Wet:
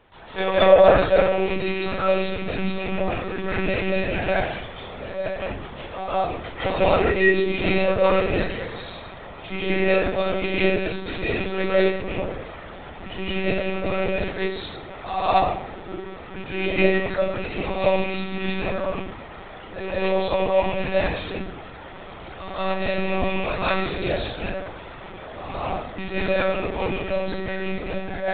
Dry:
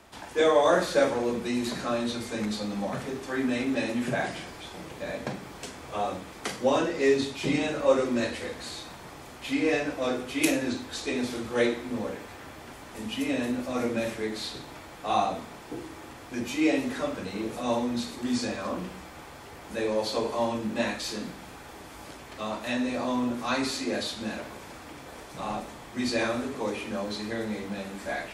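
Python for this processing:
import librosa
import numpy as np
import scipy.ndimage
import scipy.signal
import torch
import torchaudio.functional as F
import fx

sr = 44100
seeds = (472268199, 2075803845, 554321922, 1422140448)

y = fx.rattle_buzz(x, sr, strikes_db=-34.0, level_db=-24.0)
y = fx.rev_freeverb(y, sr, rt60_s=0.54, hf_ratio=0.5, predelay_ms=120, drr_db=-8.5)
y = fx.lpc_monotone(y, sr, seeds[0], pitch_hz=190.0, order=16)
y = y * 10.0 ** (-2.5 / 20.0)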